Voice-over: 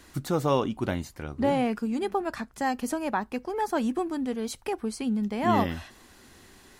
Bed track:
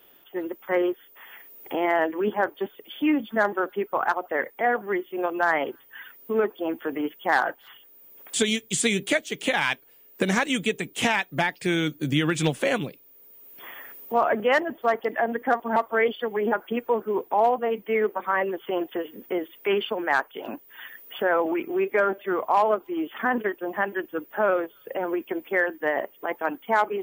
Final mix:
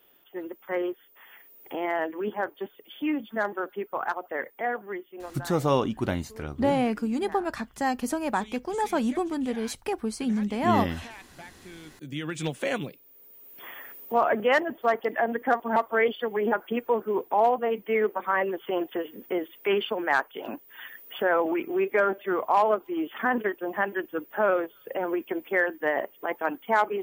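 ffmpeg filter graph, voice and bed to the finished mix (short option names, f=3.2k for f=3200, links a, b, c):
-filter_complex "[0:a]adelay=5200,volume=1dB[a];[1:a]volume=15.5dB,afade=t=out:st=4.61:d=0.92:silence=0.149624,afade=t=in:st=11.85:d=1.34:silence=0.0891251[b];[a][b]amix=inputs=2:normalize=0"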